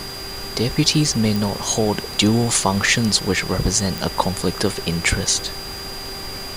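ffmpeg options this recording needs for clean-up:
-af "adeclick=t=4,bandreject=f=391.1:t=h:w=4,bandreject=f=782.2:t=h:w=4,bandreject=f=1173.3:t=h:w=4,bandreject=f=1564.4:t=h:w=4,bandreject=f=1955.5:t=h:w=4,bandreject=f=4800:w=30,afftdn=nr=30:nf=-31"

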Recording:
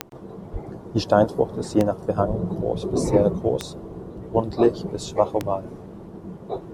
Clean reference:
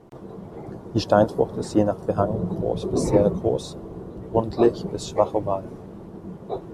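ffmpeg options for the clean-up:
-filter_complex "[0:a]adeclick=t=4,asplit=3[s0][s1][s2];[s0]afade=t=out:st=0.52:d=0.02[s3];[s1]highpass=f=140:w=0.5412,highpass=f=140:w=1.3066,afade=t=in:st=0.52:d=0.02,afade=t=out:st=0.64:d=0.02[s4];[s2]afade=t=in:st=0.64:d=0.02[s5];[s3][s4][s5]amix=inputs=3:normalize=0,asplit=3[s6][s7][s8];[s6]afade=t=out:st=2.27:d=0.02[s9];[s7]highpass=f=140:w=0.5412,highpass=f=140:w=1.3066,afade=t=in:st=2.27:d=0.02,afade=t=out:st=2.39:d=0.02[s10];[s8]afade=t=in:st=2.39:d=0.02[s11];[s9][s10][s11]amix=inputs=3:normalize=0"

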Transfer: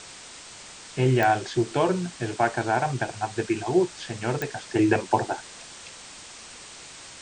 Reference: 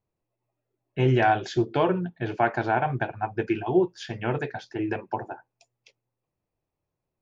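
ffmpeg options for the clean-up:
-af "adeclick=t=4,afwtdn=0.01,asetnsamples=n=441:p=0,asendcmd='4.68 volume volume -8dB',volume=1"

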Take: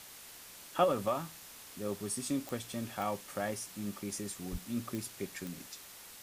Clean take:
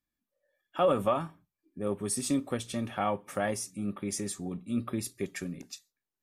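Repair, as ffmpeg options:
-filter_complex "[0:a]adeclick=t=4,asplit=3[s0][s1][s2];[s0]afade=t=out:st=4.51:d=0.02[s3];[s1]highpass=f=140:w=0.5412,highpass=f=140:w=1.3066,afade=t=in:st=4.51:d=0.02,afade=t=out:st=4.63:d=0.02[s4];[s2]afade=t=in:st=4.63:d=0.02[s5];[s3][s4][s5]amix=inputs=3:normalize=0,afwtdn=0.0032,asetnsamples=n=441:p=0,asendcmd='0.84 volume volume 5.5dB',volume=1"

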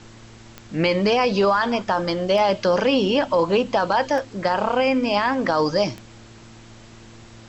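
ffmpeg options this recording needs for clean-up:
-af "adeclick=t=4,bandreject=f=113.1:t=h:w=4,bandreject=f=226.2:t=h:w=4,bandreject=f=339.3:t=h:w=4,afftdn=nr=22:nf=-44"

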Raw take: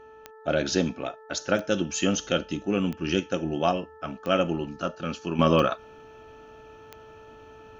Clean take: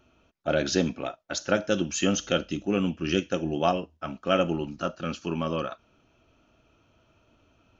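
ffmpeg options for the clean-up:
-af "adeclick=t=4,bandreject=f=438.4:t=h:w=4,bandreject=f=876.8:t=h:w=4,bandreject=f=1315.2:t=h:w=4,bandreject=f=1753.6:t=h:w=4,asetnsamples=n=441:p=0,asendcmd='5.39 volume volume -9dB',volume=1"

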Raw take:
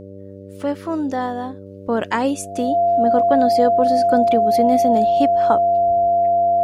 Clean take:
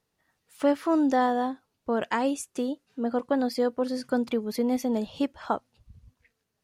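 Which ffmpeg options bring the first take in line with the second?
-af "bandreject=f=97.7:t=h:w=4,bandreject=f=195.4:t=h:w=4,bandreject=f=293.1:t=h:w=4,bandreject=f=390.8:t=h:w=4,bandreject=f=488.5:t=h:w=4,bandreject=f=586.2:t=h:w=4,bandreject=f=690:w=30,asetnsamples=n=441:p=0,asendcmd='1.66 volume volume -6.5dB',volume=1"

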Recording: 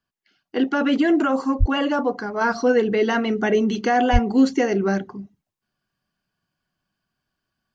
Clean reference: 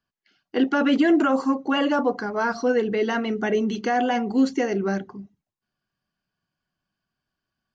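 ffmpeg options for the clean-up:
-filter_complex "[0:a]asplit=3[s0][s1][s2];[s0]afade=t=out:st=1.59:d=0.02[s3];[s1]highpass=f=140:w=0.5412,highpass=f=140:w=1.3066,afade=t=in:st=1.59:d=0.02,afade=t=out:st=1.71:d=0.02[s4];[s2]afade=t=in:st=1.71:d=0.02[s5];[s3][s4][s5]amix=inputs=3:normalize=0,asplit=3[s6][s7][s8];[s6]afade=t=out:st=4.12:d=0.02[s9];[s7]highpass=f=140:w=0.5412,highpass=f=140:w=1.3066,afade=t=in:st=4.12:d=0.02,afade=t=out:st=4.24:d=0.02[s10];[s8]afade=t=in:st=4.24:d=0.02[s11];[s9][s10][s11]amix=inputs=3:normalize=0,asetnsamples=n=441:p=0,asendcmd='2.41 volume volume -3.5dB',volume=1"

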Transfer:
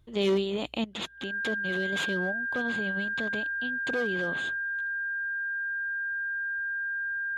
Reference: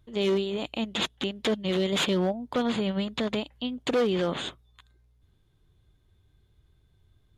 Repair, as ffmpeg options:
-af "bandreject=f=1600:w=30,asetnsamples=n=441:p=0,asendcmd='0.84 volume volume 7dB',volume=1"

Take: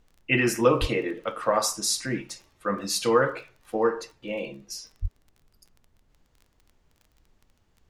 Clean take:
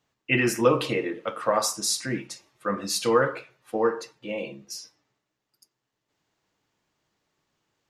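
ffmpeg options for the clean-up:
-filter_complex "[0:a]adeclick=t=4,asplit=3[s0][s1][s2];[s0]afade=t=out:st=0.8:d=0.02[s3];[s1]highpass=f=140:w=0.5412,highpass=f=140:w=1.3066,afade=t=in:st=0.8:d=0.02,afade=t=out:st=0.92:d=0.02[s4];[s2]afade=t=in:st=0.92:d=0.02[s5];[s3][s4][s5]amix=inputs=3:normalize=0,asplit=3[s6][s7][s8];[s6]afade=t=out:st=5.01:d=0.02[s9];[s7]highpass=f=140:w=0.5412,highpass=f=140:w=1.3066,afade=t=in:st=5.01:d=0.02,afade=t=out:st=5.13:d=0.02[s10];[s8]afade=t=in:st=5.13:d=0.02[s11];[s9][s10][s11]amix=inputs=3:normalize=0,agate=range=0.0891:threshold=0.00126"

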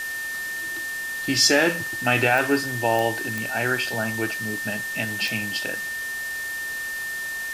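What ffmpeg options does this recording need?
-af "adeclick=t=4,bandreject=f=1800:w=30,afwtdn=0.014"

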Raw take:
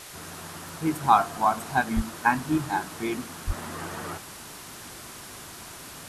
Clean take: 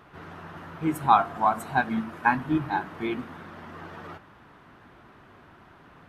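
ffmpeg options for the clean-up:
-filter_complex "[0:a]adeclick=t=4,asplit=3[s0][s1][s2];[s0]afade=t=out:st=1.95:d=0.02[s3];[s1]highpass=f=140:w=0.5412,highpass=f=140:w=1.3066,afade=t=in:st=1.95:d=0.02,afade=t=out:st=2.07:d=0.02[s4];[s2]afade=t=in:st=2.07:d=0.02[s5];[s3][s4][s5]amix=inputs=3:normalize=0,asplit=3[s6][s7][s8];[s6]afade=t=out:st=3.46:d=0.02[s9];[s7]highpass=f=140:w=0.5412,highpass=f=140:w=1.3066,afade=t=in:st=3.46:d=0.02,afade=t=out:st=3.58:d=0.02[s10];[s8]afade=t=in:st=3.58:d=0.02[s11];[s9][s10][s11]amix=inputs=3:normalize=0,afwtdn=0.0079,asetnsamples=n=441:p=0,asendcmd='3.5 volume volume -5.5dB',volume=1"

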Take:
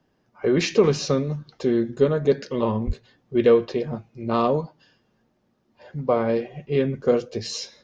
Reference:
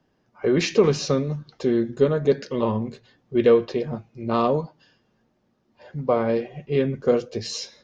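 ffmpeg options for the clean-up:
-filter_complex "[0:a]asplit=3[s0][s1][s2];[s0]afade=t=out:st=2.86:d=0.02[s3];[s1]highpass=f=140:w=0.5412,highpass=f=140:w=1.3066,afade=t=in:st=2.86:d=0.02,afade=t=out:st=2.98:d=0.02[s4];[s2]afade=t=in:st=2.98:d=0.02[s5];[s3][s4][s5]amix=inputs=3:normalize=0"

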